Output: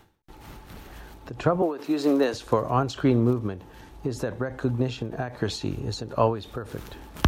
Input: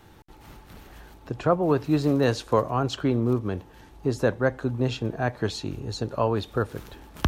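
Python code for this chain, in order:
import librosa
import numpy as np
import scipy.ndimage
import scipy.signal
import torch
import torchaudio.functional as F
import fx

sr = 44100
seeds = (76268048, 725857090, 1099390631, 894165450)

y = fx.highpass(x, sr, hz=250.0, slope=24, at=(1.62, 2.34))
y = fx.end_taper(y, sr, db_per_s=120.0)
y = y * 10.0 ** (3.0 / 20.0)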